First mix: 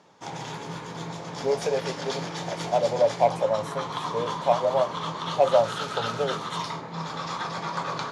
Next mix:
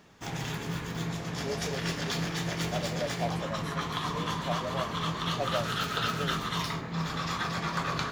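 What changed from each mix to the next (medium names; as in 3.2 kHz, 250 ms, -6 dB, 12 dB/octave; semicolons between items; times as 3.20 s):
speech -10.0 dB; master: remove cabinet simulation 160–9600 Hz, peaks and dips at 230 Hz -4 dB, 540 Hz +5 dB, 900 Hz +8 dB, 1.8 kHz -4 dB, 2.7 kHz -4 dB, 8 kHz -3 dB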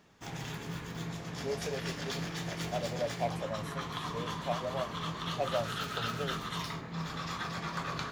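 background -5.5 dB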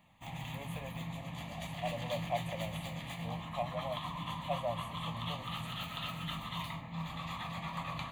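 speech: entry -0.90 s; master: add static phaser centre 1.5 kHz, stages 6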